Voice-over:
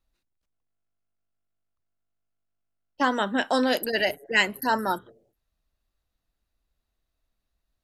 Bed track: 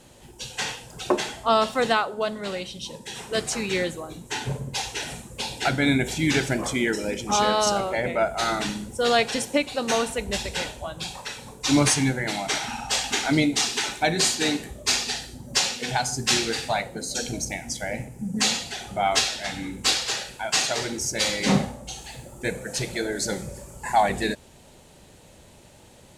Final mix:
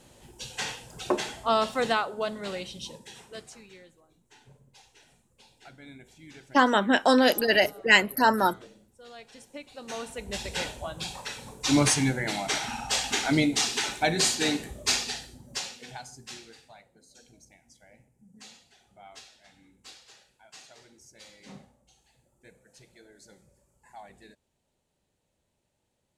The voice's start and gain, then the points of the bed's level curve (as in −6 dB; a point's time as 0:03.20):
3.55 s, +3.0 dB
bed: 0:02.85 −4 dB
0:03.81 −27 dB
0:09.14 −27 dB
0:10.60 −2.5 dB
0:14.90 −2.5 dB
0:16.74 −27 dB